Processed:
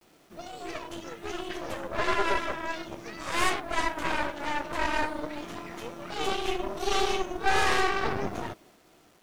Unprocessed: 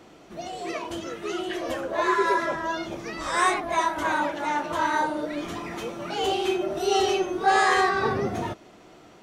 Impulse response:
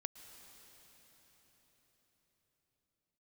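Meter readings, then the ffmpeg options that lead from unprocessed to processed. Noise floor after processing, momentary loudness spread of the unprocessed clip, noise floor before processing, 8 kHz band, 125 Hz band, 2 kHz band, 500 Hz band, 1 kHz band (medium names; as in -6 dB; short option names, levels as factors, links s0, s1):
-60 dBFS, 12 LU, -51 dBFS, -2.5 dB, -2.5 dB, -3.0 dB, -6.0 dB, -5.5 dB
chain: -af "aeval=exprs='0.355*(cos(1*acos(clip(val(0)/0.355,-1,1)))-cos(1*PI/2))+0.126*(cos(4*acos(clip(val(0)/0.355,-1,1)))-cos(4*PI/2))+0.0316*(cos(8*acos(clip(val(0)/0.355,-1,1)))-cos(8*PI/2))':c=same,agate=range=0.0224:threshold=0.00501:ratio=3:detection=peak,acrusher=bits=8:mix=0:aa=0.000001,volume=0.447"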